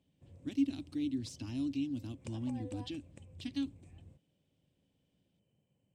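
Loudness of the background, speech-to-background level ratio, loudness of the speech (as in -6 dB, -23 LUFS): -55.5 LUFS, 17.0 dB, -38.5 LUFS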